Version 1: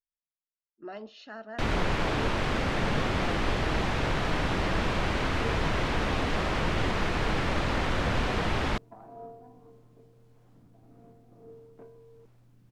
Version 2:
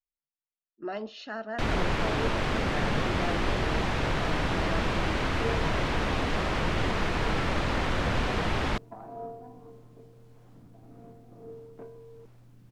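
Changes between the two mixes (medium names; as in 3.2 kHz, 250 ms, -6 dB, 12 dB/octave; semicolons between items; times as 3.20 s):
speech +6.0 dB; second sound +5.0 dB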